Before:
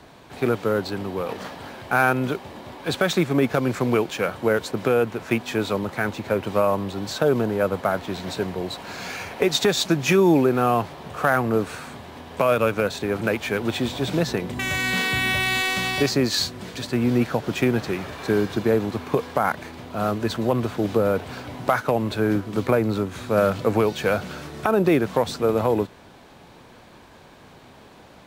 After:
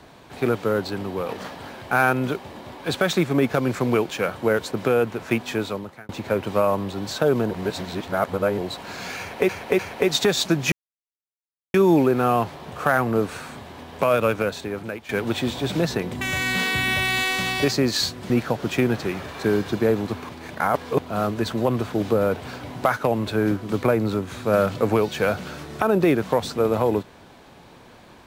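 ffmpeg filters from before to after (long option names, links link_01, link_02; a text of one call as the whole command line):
ffmpeg -i in.wav -filter_complex "[0:a]asplit=11[link_01][link_02][link_03][link_04][link_05][link_06][link_07][link_08][link_09][link_10][link_11];[link_01]atrim=end=6.09,asetpts=PTS-STARTPTS,afade=type=out:start_time=5.5:duration=0.59[link_12];[link_02]atrim=start=6.09:end=7.512,asetpts=PTS-STARTPTS,afade=type=in:duration=0.004:curve=hsin[link_13];[link_03]atrim=start=7.508:end=8.582,asetpts=PTS-STARTPTS,areverse[link_14];[link_04]atrim=start=8.578:end=9.492[link_15];[link_05]atrim=start=9.188:end=9.492[link_16];[link_06]atrim=start=9.188:end=10.12,asetpts=PTS-STARTPTS,afade=type=out:start_time=0.928:duration=0.004:curve=hsin,apad=pad_dur=1.02[link_17];[link_07]atrim=start=10.12:end=13.47,asetpts=PTS-STARTPTS,afade=type=in:duration=0.004:curve=hsin,afade=type=out:start_time=2.58:duration=0.77:silence=0.177828[link_18];[link_08]atrim=start=13.47:end=16.682,asetpts=PTS-STARTPTS,afade=type=in:duration=0.004:curve=hsin:silence=0.177828[link_19];[link_09]atrim=start=17.138:end=19.132[link_20];[link_10]atrim=start=19.128:end=19.832,asetpts=PTS-STARTPTS,areverse[link_21];[link_11]atrim=start=19.828[link_22];[link_12][link_13]concat=n=2:v=0:a=1[link_23];[link_23][link_14]acrossfade=duration=0.004:curve1=hsin:curve2=hsin[link_24];[link_24][link_15]acrossfade=duration=0.004:curve1=hsin:curve2=hsin[link_25];[link_25][link_16]acrossfade=duration=0.004:curve1=hsin:curve2=hsin[link_26];[link_17][link_18][link_19]concat=n=3:v=0:a=1[link_27];[link_26][link_27]acrossfade=duration=0.004:curve1=hsin:curve2=hsin[link_28];[link_28][link_20]acrossfade=duration=0.004:curve1=hsin:curve2=hsin[link_29];[link_29][link_21]acrossfade=duration=0.004:curve1=hsin:curve2=hsin[link_30];[link_30][link_22]acrossfade=duration=0.004:curve1=hsin:curve2=hsin" out.wav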